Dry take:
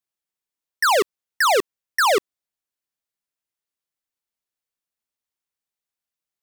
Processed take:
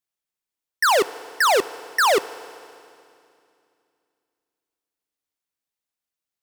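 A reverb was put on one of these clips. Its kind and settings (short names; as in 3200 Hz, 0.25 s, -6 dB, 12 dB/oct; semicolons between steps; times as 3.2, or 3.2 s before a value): FDN reverb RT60 2.5 s, low-frequency decay 1.35×, high-frequency decay 1×, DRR 15.5 dB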